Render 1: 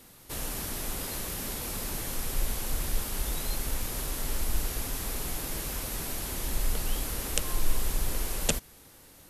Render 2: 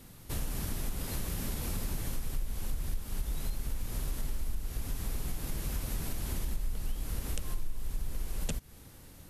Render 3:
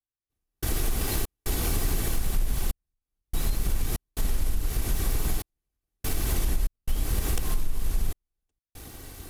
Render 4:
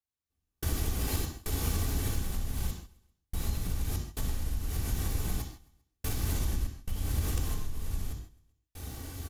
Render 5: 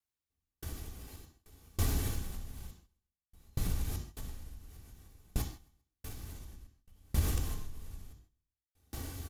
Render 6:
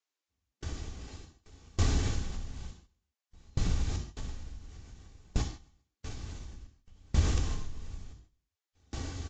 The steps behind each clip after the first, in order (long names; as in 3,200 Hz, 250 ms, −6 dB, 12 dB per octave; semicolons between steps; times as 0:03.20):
bass and treble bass +10 dB, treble −1 dB; downward compressor 5 to 1, threshold −28 dBFS, peak gain reduction 18.5 dB; level −2 dB
lower of the sound and its delayed copy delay 2.6 ms; gate pattern "...xxx.xxxxxx" 72 BPM −60 dB; in parallel at +2 dB: brickwall limiter −29 dBFS, peak gain reduction 11.5 dB; on the sum: level +4 dB
downward compressor 2 to 1, threshold −30 dBFS, peak gain reduction 6.5 dB; repeating echo 132 ms, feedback 41%, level −21.5 dB; on a send at −3 dB: convolution reverb, pre-delay 3 ms; on the sum: level −2.5 dB
tremolo with a ramp in dB decaying 0.56 Hz, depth 33 dB; level +2 dB
level +4 dB; Ogg Vorbis 64 kbit/s 16,000 Hz